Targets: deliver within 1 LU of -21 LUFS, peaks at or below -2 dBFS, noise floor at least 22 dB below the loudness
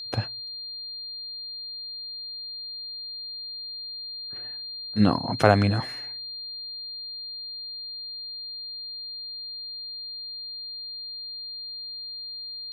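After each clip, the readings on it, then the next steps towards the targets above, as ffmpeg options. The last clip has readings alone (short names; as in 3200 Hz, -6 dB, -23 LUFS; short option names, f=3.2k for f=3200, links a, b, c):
steady tone 4200 Hz; tone level -34 dBFS; loudness -30.5 LUFS; peak -2.0 dBFS; loudness target -21.0 LUFS
-> -af "bandreject=f=4.2k:w=30"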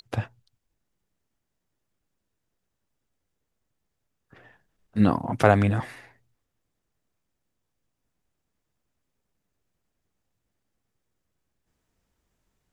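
steady tone none; loudness -23.5 LUFS; peak -2.0 dBFS; loudness target -21.0 LUFS
-> -af "volume=2.5dB,alimiter=limit=-2dB:level=0:latency=1"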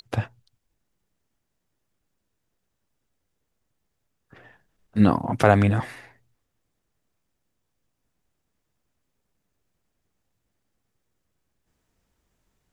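loudness -21.5 LUFS; peak -2.0 dBFS; noise floor -78 dBFS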